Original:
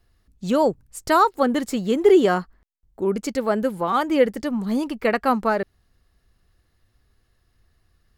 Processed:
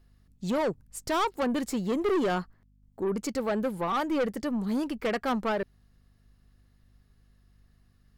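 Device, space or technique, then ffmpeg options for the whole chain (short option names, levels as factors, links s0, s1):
valve amplifier with mains hum: -af "aeval=exprs='(tanh(10*val(0)+0.15)-tanh(0.15))/10':c=same,aeval=exprs='val(0)+0.00126*(sin(2*PI*50*n/s)+sin(2*PI*2*50*n/s)/2+sin(2*PI*3*50*n/s)/3+sin(2*PI*4*50*n/s)/4+sin(2*PI*5*50*n/s)/5)':c=same,volume=0.708"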